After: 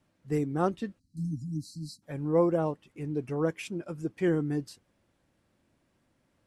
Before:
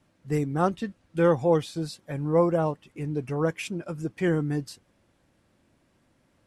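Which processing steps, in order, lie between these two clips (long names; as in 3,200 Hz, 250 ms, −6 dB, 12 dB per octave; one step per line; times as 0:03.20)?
time-frequency box erased 0:00.99–0:02.03, 310–3,900 Hz
dynamic equaliser 340 Hz, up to +5 dB, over −37 dBFS, Q 1.2
level −5.5 dB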